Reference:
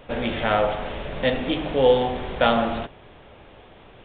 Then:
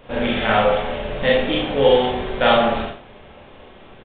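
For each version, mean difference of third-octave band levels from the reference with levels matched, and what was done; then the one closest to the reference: 2.0 dB: dynamic bell 2.1 kHz, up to +3 dB, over -34 dBFS, Q 0.93; Schroeder reverb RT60 0.38 s, combs from 29 ms, DRR -3.5 dB; resampled via 11.025 kHz; trim -1 dB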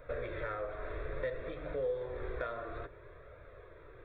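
5.0 dB: compression 6:1, threshold -29 dBFS, peak gain reduction 16 dB; static phaser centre 810 Hz, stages 6; flange 0.59 Hz, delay 1.3 ms, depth 1.7 ms, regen -48%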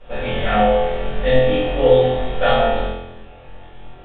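3.0 dB: distance through air 57 m; on a send: flutter echo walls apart 4 m, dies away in 0.86 s; on the sum: simulated room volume 150 m³, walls furnished, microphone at 4.4 m; trim -10 dB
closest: first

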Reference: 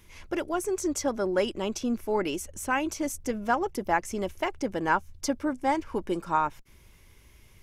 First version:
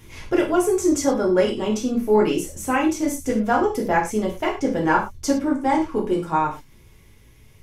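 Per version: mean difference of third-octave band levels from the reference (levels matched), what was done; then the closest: 5.0 dB: bass shelf 140 Hz -6 dB; gated-style reverb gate 140 ms falling, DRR -2 dB; gain riding 2 s; bass shelf 420 Hz +8.5 dB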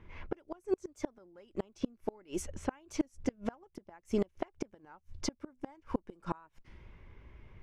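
11.5 dB: level-controlled noise filter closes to 1.7 kHz, open at -25.5 dBFS; treble shelf 3.9 kHz -7.5 dB; inverted gate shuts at -22 dBFS, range -33 dB; warped record 33 1/3 rpm, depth 100 cents; trim +2.5 dB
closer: first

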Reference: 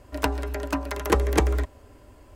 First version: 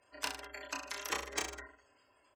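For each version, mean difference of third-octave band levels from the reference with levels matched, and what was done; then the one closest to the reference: 8.0 dB: spectral gate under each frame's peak -30 dB strong; band-pass filter 5.9 kHz, Q 0.92; saturation -25.5 dBFS, distortion -11 dB; on a send: reverse bouncing-ball echo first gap 30 ms, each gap 1.15×, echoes 5; on the sum: trim +1.5 dB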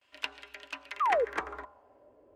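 11.0 dB: gate with hold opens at -42 dBFS; de-hum 74.36 Hz, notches 20; band-pass sweep 2.9 kHz -> 470 Hz, 0.83–2.24 s; painted sound fall, 1.00–1.25 s, 430–1300 Hz -26 dBFS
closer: first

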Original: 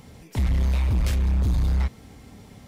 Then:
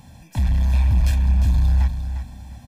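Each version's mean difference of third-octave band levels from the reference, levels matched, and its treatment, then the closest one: 3.5 dB: comb 1.2 ms, depth 87%; feedback delay 352 ms, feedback 26%, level -9 dB; trim -2 dB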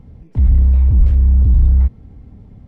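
12.0 dB: tilt EQ -4.5 dB/octave; decimation joined by straight lines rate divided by 3×; trim -7 dB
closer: first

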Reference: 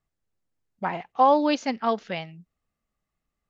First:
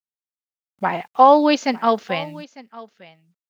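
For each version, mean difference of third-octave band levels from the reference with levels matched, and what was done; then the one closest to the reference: 2.0 dB: bit crusher 11-bit; high-pass 140 Hz 6 dB/octave; delay 901 ms -20 dB; trim +7 dB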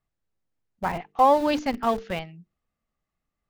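5.0 dB: treble shelf 5.7 kHz -8 dB; hum notches 50/100/150/200/250/300/350/400/450 Hz; in parallel at -10 dB: Schmitt trigger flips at -28 dBFS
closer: first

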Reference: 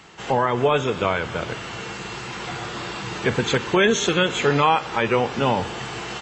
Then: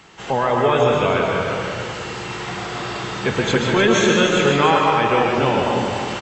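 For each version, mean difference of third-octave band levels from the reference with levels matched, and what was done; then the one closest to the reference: 3.5 dB: delay 294 ms -7.5 dB; algorithmic reverb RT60 1.4 s, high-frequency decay 0.4×, pre-delay 90 ms, DRR 0 dB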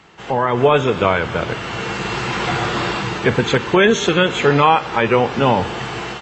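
2.0 dB: treble shelf 6.1 kHz -11 dB; level rider gain up to 11.5 dB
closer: second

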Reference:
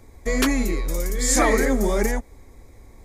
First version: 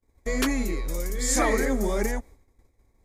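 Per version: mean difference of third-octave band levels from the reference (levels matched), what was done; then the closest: 2.5 dB: expander -35 dBFS; trim -4.5 dB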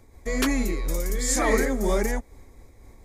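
1.0 dB: random flutter of the level, depth 55%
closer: second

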